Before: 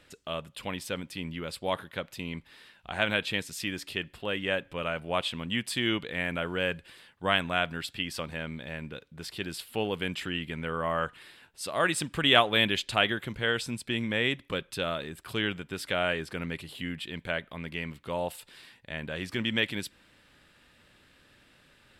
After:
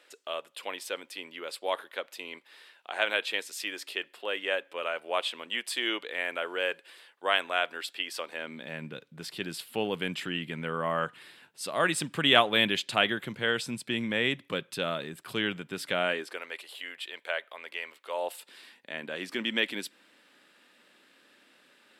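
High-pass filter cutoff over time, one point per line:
high-pass filter 24 dB per octave
0:08.29 370 Hz
0:08.85 130 Hz
0:15.94 130 Hz
0:16.42 480 Hz
0:18.10 480 Hz
0:18.51 230 Hz

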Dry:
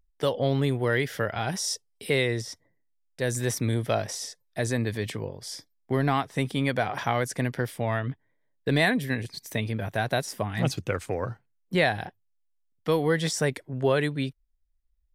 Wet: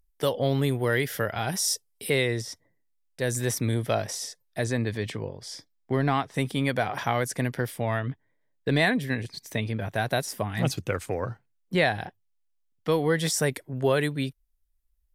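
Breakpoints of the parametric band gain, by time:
parametric band 13,000 Hz 0.94 octaves
+11.5 dB
from 0:02.10 +3.5 dB
from 0:04.64 −7.5 dB
from 0:06.34 +4.5 dB
from 0:08.03 −4 dB
from 0:09.96 +5 dB
from 0:11.20 −1 dB
from 0:13.19 +10.5 dB

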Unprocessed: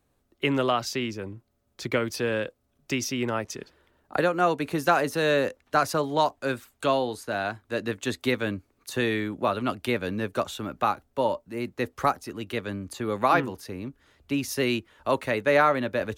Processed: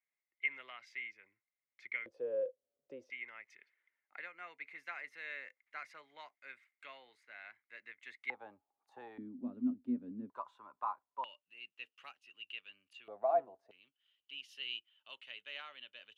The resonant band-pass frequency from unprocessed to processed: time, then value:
resonant band-pass, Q 16
2,100 Hz
from 0:02.06 520 Hz
from 0:03.10 2,100 Hz
from 0:08.30 820 Hz
from 0:09.18 250 Hz
from 0:10.30 1,000 Hz
from 0:11.24 2,800 Hz
from 0:13.08 680 Hz
from 0:13.71 3,000 Hz

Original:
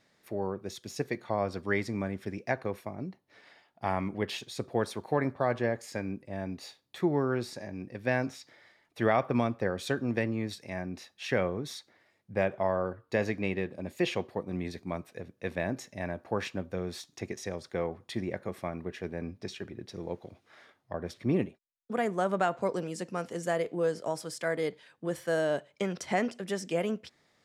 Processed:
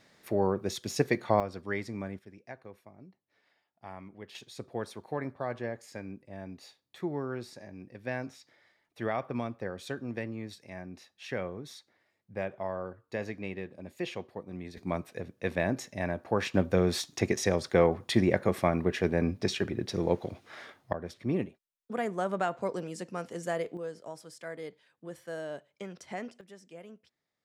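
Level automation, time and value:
+6 dB
from 0:01.40 −4.5 dB
from 0:02.19 −14.5 dB
from 0:04.35 −6.5 dB
from 0:14.77 +3 dB
from 0:16.54 +9.5 dB
from 0:20.93 −2.5 dB
from 0:23.77 −10 dB
from 0:26.41 −18 dB

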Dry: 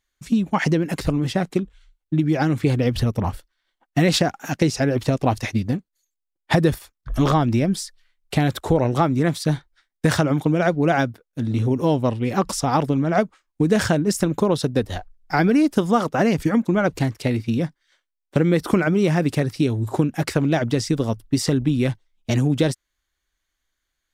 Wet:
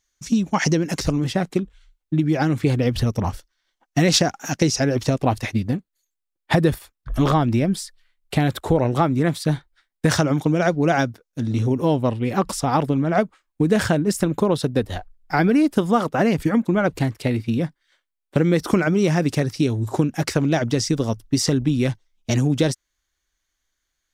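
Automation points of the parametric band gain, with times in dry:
parametric band 5,900 Hz 0.58 octaves
+13 dB
from 0:01.24 +1.5 dB
from 0:03.04 +8.5 dB
from 0:05.13 −3 dB
from 0:10.10 +6.5 dB
from 0:11.72 −3.5 dB
from 0:18.38 +6 dB

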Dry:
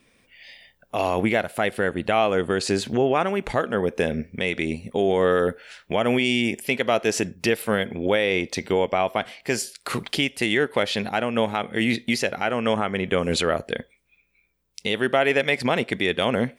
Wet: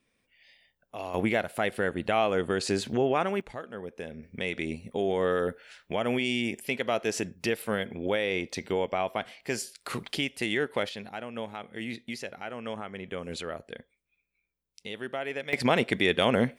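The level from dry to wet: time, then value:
−13.5 dB
from 0:01.14 −5 dB
from 0:03.41 −16 dB
from 0:04.23 −7 dB
from 0:10.89 −14 dB
from 0:15.53 −1.5 dB

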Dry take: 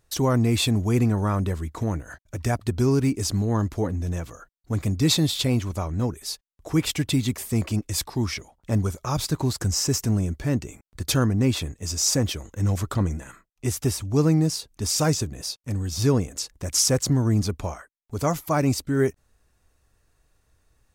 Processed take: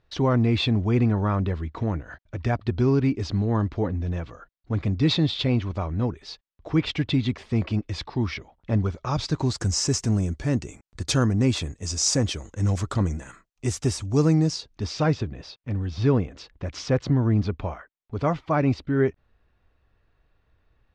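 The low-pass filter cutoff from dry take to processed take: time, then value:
low-pass filter 24 dB per octave
0:08.91 4,100 Hz
0:09.67 8,000 Hz
0:14.28 8,000 Hz
0:15.06 3,600 Hz

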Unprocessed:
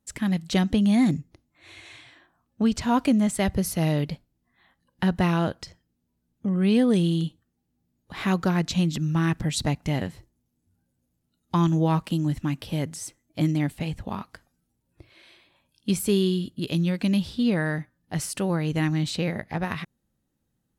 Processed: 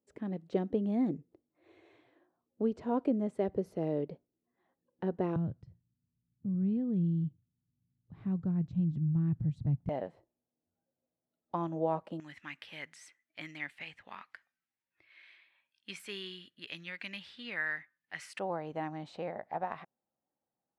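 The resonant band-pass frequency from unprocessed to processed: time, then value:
resonant band-pass, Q 2.6
430 Hz
from 0:05.36 120 Hz
from 0:09.89 610 Hz
from 0:12.20 2,000 Hz
from 0:18.39 740 Hz

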